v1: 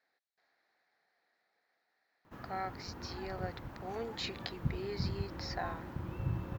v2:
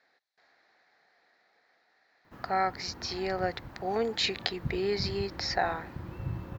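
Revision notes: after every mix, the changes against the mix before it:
speech +11.0 dB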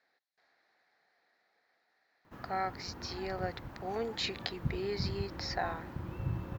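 speech -6.5 dB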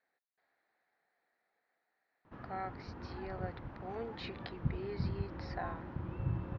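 speech -5.5 dB; master: add air absorption 270 m

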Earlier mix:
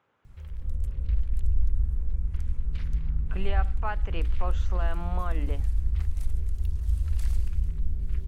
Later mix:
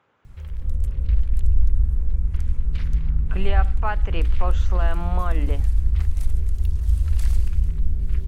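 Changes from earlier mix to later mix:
speech +6.0 dB; background +6.5 dB

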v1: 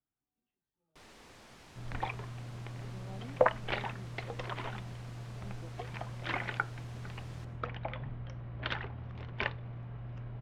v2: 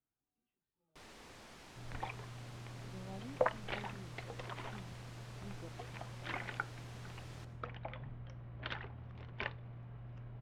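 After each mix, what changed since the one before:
second sound -6.5 dB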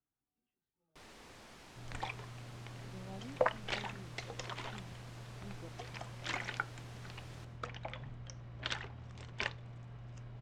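second sound: remove air absorption 330 m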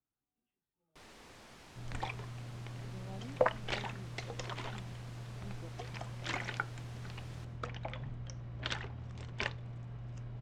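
second sound: add low shelf 490 Hz +5 dB

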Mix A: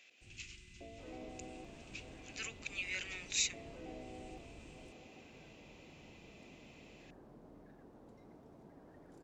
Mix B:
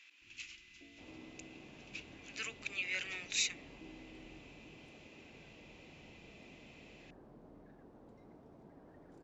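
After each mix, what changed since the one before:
speech +3.5 dB; first sound: add vocal tract filter u; master: add high shelf 7400 Hz -12 dB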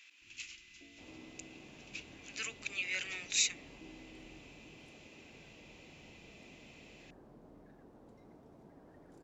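master: add high shelf 7400 Hz +12 dB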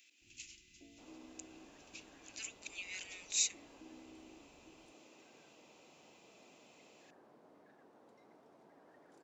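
speech: add differentiator; second sound: add weighting filter A

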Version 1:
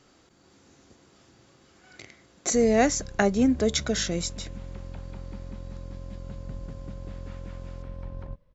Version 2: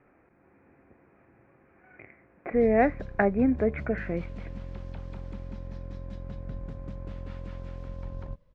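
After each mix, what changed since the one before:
speech: add rippled Chebyshev low-pass 2500 Hz, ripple 3 dB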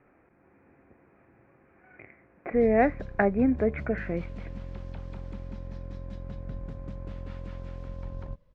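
none

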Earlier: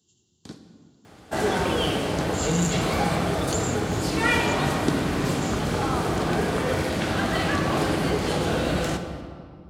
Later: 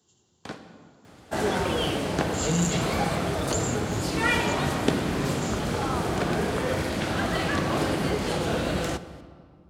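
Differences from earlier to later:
first sound: add band shelf 1200 Hz +12.5 dB 2.9 oct; second sound: send -9.0 dB

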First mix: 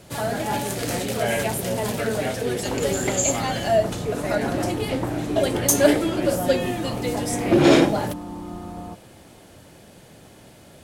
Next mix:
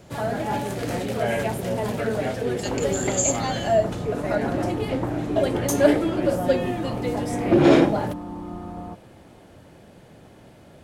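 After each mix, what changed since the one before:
first sound: add high shelf 3300 Hz -11.5 dB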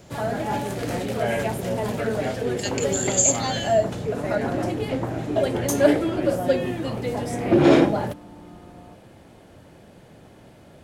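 speech +4.5 dB; second sound -11.0 dB

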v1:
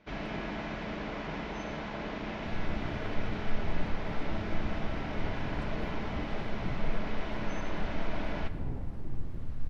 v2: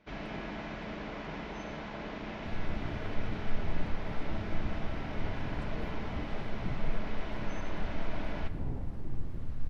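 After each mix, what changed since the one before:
first sound -3.0 dB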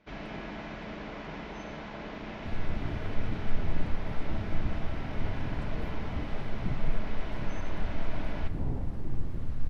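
second sound +4.0 dB

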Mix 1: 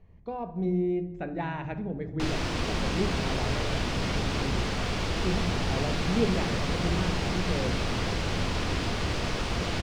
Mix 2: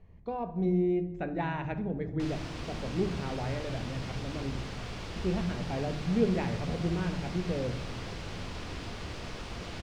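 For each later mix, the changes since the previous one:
background -10.5 dB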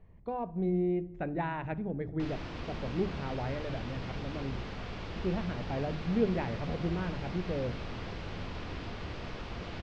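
speech: send -8.0 dB; master: add Gaussian blur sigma 1.7 samples

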